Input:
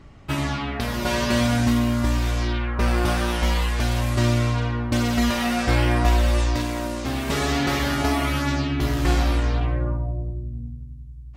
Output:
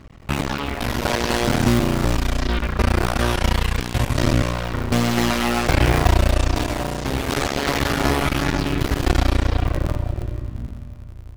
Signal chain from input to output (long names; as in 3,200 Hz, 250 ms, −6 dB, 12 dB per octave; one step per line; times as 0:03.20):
sub-harmonics by changed cycles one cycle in 2, muted
on a send: tilt shelving filter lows −3.5 dB + convolution reverb RT60 3.3 s, pre-delay 80 ms, DRR 14 dB
on the sum: level +5 dB